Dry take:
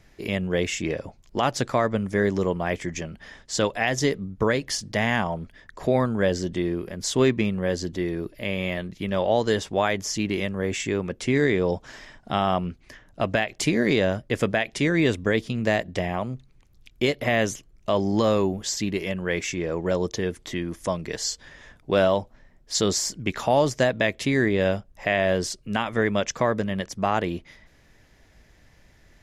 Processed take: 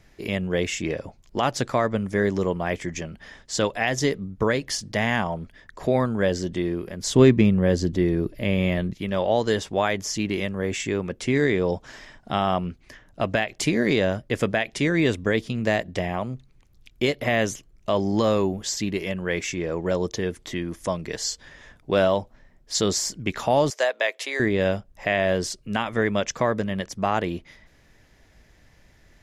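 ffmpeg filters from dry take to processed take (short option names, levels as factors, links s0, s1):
-filter_complex "[0:a]asettb=1/sr,asplit=3[s0][s1][s2];[s0]atrim=end=7.064[s3];[s1]atrim=start=7.06:end=8.93,asetpts=PTS-STARTPTS,afade=t=in:d=0.004:c=qsin,afade=t=out:st=1.866:d=0.004:c=qsin,lowshelf=f=400:g=9[s4];[s2]atrim=start=8.926[s5];[s3][s4]acrossfade=d=0.004:c1=hsin:c2=qsin[s6];[s6][s5]acrossfade=d=0.004:c1=qsin:c2=hsin,asettb=1/sr,asplit=3[s7][s8][s9];[s7]atrim=end=23.704[s10];[s8]atrim=start=23.7:end=24.4,asetpts=PTS-STARTPTS,afade=t=in:d=0.004:c=qsin,afade=t=out:st=0.696:d=0.004:c=qsin,highpass=f=490:w=0.5412,highpass=f=490:w=1.3066[s11];[s9]atrim=start=24.396[s12];[s10][s11]acrossfade=d=0.004:c1=hsin:c2=qsin[s13];[s13][s12]acrossfade=d=0.004:c1=qsin:c2=hsin"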